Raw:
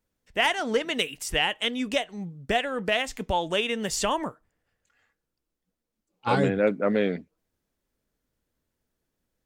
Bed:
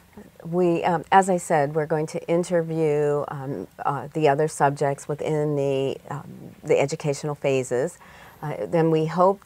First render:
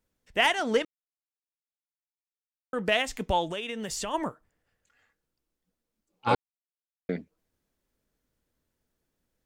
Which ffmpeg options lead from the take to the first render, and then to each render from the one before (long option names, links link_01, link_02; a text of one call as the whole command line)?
ffmpeg -i in.wav -filter_complex "[0:a]asplit=3[link_01][link_02][link_03];[link_01]afade=type=out:start_time=3.45:duration=0.02[link_04];[link_02]acompressor=threshold=-31dB:ratio=4:attack=3.2:release=140:knee=1:detection=peak,afade=type=in:start_time=3.45:duration=0.02,afade=type=out:start_time=4.13:duration=0.02[link_05];[link_03]afade=type=in:start_time=4.13:duration=0.02[link_06];[link_04][link_05][link_06]amix=inputs=3:normalize=0,asplit=5[link_07][link_08][link_09][link_10][link_11];[link_07]atrim=end=0.85,asetpts=PTS-STARTPTS,afade=type=out:start_time=0.846:duration=0.004:curve=hsin[link_12];[link_08]atrim=start=0.85:end=2.73,asetpts=PTS-STARTPTS,volume=0[link_13];[link_09]atrim=start=2.73:end=6.35,asetpts=PTS-STARTPTS,afade=type=in:duration=0.004:curve=hsin,afade=type=out:start_time=3.616:duration=0.004:curve=hsin[link_14];[link_10]atrim=start=6.35:end=7.09,asetpts=PTS-STARTPTS,volume=0[link_15];[link_11]atrim=start=7.09,asetpts=PTS-STARTPTS,afade=type=in:duration=0.004:curve=hsin[link_16];[link_12][link_13][link_14][link_15][link_16]concat=n=5:v=0:a=1" out.wav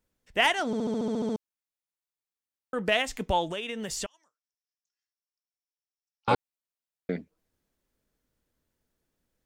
ffmpeg -i in.wav -filter_complex "[0:a]asettb=1/sr,asplit=3[link_01][link_02][link_03];[link_01]atrim=end=4.064[link_04];[link_02]atrim=start=4.06:end=6.28,asetpts=PTS-STARTPTS,afade=type=in:duration=0.004:curve=qsin,afade=type=out:start_time=2.216:duration=0.004:curve=qsin,bandpass=frequency=5500:width_type=q:width=12[link_05];[link_03]atrim=start=6.276[link_06];[link_04][link_05]acrossfade=duration=0.004:curve1=hsin:curve2=qsin[link_07];[link_07][link_06]acrossfade=duration=0.004:curve1=qsin:curve2=hsin,asplit=11[link_08][link_09][link_10][link_11][link_12][link_13][link_14][link_15][link_16][link_17][link_18];[link_08]atrim=end=0.732[link_19];[link_09]atrim=start=0.658:end=0.732[link_20];[link_10]atrim=start=0.658:end=0.732[link_21];[link_11]atrim=start=0.658:end=0.732[link_22];[link_12]atrim=start=0.658:end=0.732[link_23];[link_13]atrim=start=0.658:end=0.732[link_24];[link_14]atrim=start=0.658:end=0.732[link_25];[link_15]atrim=start=0.658:end=0.732[link_26];[link_16]atrim=start=0.658:end=0.732[link_27];[link_17]atrim=start=0.658:end=0.732[link_28];[link_18]atrim=start=1.358[link_29];[link_19][link_20]acrossfade=duration=0.004:curve1=hsin:curve2=hsin[link_30];[link_30][link_21]acrossfade=duration=0.004:curve1=hsin:curve2=hsin[link_31];[link_31][link_22]acrossfade=duration=0.004:curve1=hsin:curve2=hsin[link_32];[link_32][link_23]acrossfade=duration=0.004:curve1=hsin:curve2=hsin[link_33];[link_33][link_24]acrossfade=duration=0.004:curve1=hsin:curve2=hsin[link_34];[link_34][link_25]acrossfade=duration=0.004:curve1=hsin:curve2=hsin[link_35];[link_35][link_26]acrossfade=duration=0.004:curve1=hsin:curve2=hsin[link_36];[link_36][link_27]acrossfade=duration=0.004:curve1=hsin:curve2=hsin[link_37];[link_37][link_28]acrossfade=duration=0.004:curve1=hsin:curve2=hsin[link_38];[link_38][link_29]acrossfade=duration=0.004:curve1=hsin:curve2=hsin" out.wav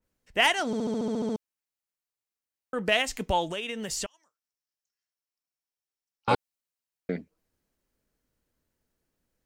ffmpeg -i in.wav -af "bandreject=frequency=3500:width=17,adynamicequalizer=threshold=0.0141:dfrequency=2600:dqfactor=0.7:tfrequency=2600:tqfactor=0.7:attack=5:release=100:ratio=0.375:range=2:mode=boostabove:tftype=highshelf" out.wav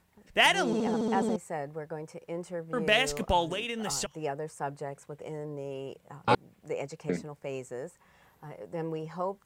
ffmpeg -i in.wav -i bed.wav -filter_complex "[1:a]volume=-15dB[link_01];[0:a][link_01]amix=inputs=2:normalize=0" out.wav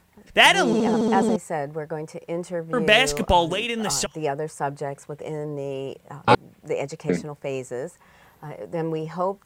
ffmpeg -i in.wav -af "volume=8dB" out.wav